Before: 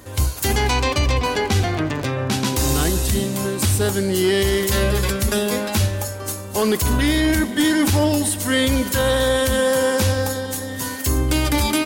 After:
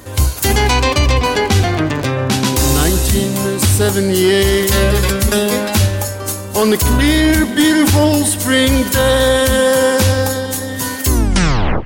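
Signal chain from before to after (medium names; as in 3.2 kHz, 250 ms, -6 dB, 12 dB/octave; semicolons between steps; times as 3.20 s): tape stop on the ending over 0.76 s; on a send: band-passed feedback delay 145 ms, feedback 43%, band-pass 1.9 kHz, level -19.5 dB; on the sum: trim +6 dB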